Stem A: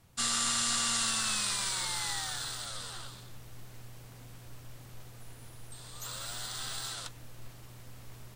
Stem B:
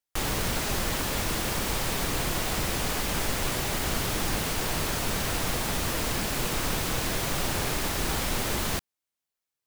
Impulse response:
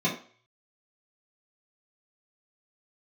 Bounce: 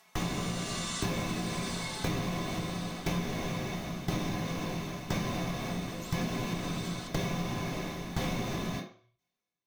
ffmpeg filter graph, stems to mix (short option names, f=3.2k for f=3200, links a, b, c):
-filter_complex "[0:a]highpass=830,aecho=1:1:4.6:0.99,acompressor=mode=upward:threshold=-45dB:ratio=2.5,volume=-9dB,asplit=2[a][b];[b]volume=-7.5dB[c];[1:a]aeval=exprs='val(0)*pow(10,-25*if(lt(mod(0.98*n/s,1),2*abs(0.98)/1000),1-mod(0.98*n/s,1)/(2*abs(0.98)/1000),(mod(0.98*n/s,1)-2*abs(0.98)/1000)/(1-2*abs(0.98)/1000))/20)':c=same,volume=1.5dB,asplit=2[d][e];[e]volume=-3dB[f];[2:a]atrim=start_sample=2205[g];[c][f]amix=inputs=2:normalize=0[h];[h][g]afir=irnorm=-1:irlink=0[i];[a][d][i]amix=inputs=3:normalize=0,acompressor=threshold=-30dB:ratio=6"